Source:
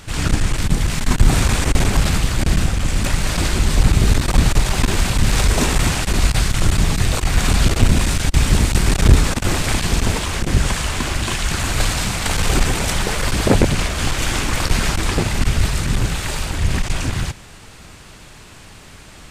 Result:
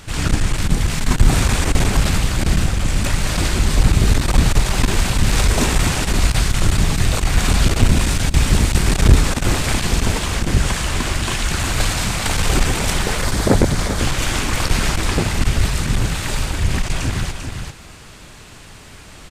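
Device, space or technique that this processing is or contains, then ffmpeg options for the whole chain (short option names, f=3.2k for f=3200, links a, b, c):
ducked delay: -filter_complex "[0:a]asettb=1/sr,asplit=3[a][b][c];[a]atrim=end=13.244[d];[b]atrim=start=13.24:end=14,asetpts=PTS-STARTPTS,afade=t=in:d=0.004:c=qsin,afade=t=out:st=0.756:d=0.004:c=qsin,equalizer=f=2.7k:w=2.8:g=-8[e];[c]atrim=start=13.996[f];[d][e]acrossfade=d=0.004:c1=hsin:c2=qsin[g];[g][f]acrossfade=d=0.004:c1=qsin:c2=hsin,asplit=3[h][i][j];[i]adelay=394,volume=-6.5dB[k];[j]apad=whole_len=868622[l];[k][l]sidechaincompress=threshold=-20dB:ratio=8:attack=16:release=284[m];[h][m]amix=inputs=2:normalize=0"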